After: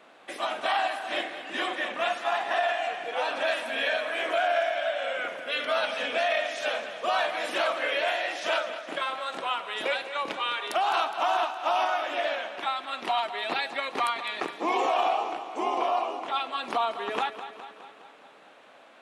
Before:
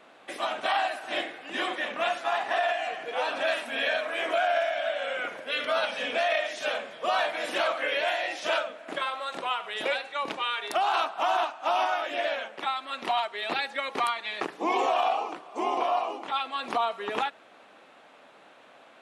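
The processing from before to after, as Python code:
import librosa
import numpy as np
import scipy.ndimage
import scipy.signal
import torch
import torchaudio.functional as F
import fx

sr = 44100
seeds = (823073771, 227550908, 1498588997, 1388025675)

p1 = fx.low_shelf(x, sr, hz=86.0, db=-8.5)
y = p1 + fx.echo_feedback(p1, sr, ms=207, feedback_pct=60, wet_db=-12, dry=0)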